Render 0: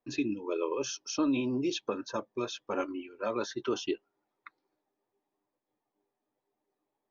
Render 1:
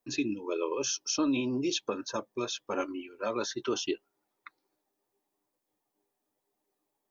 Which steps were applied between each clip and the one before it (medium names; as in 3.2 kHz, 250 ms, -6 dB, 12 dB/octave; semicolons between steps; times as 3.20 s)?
treble shelf 4.9 kHz +11 dB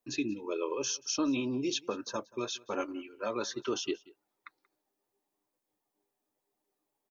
delay 182 ms -23.5 dB; trim -2 dB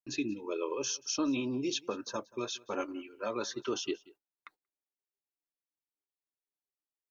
gate -58 dBFS, range -23 dB; trim -1 dB